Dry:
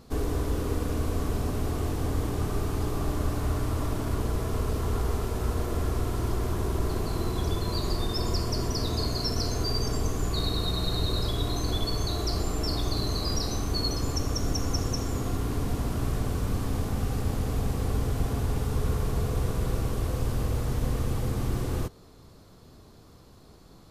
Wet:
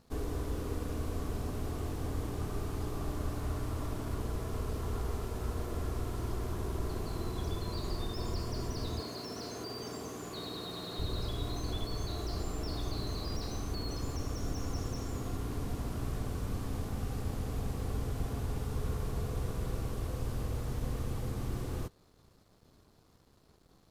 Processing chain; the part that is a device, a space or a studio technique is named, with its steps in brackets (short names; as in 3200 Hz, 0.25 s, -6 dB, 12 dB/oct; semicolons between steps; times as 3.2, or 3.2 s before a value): early transistor amplifier (crossover distortion -57 dBFS; slew limiter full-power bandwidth 64 Hz); 9–10.99 HPF 200 Hz 12 dB/oct; gain -7.5 dB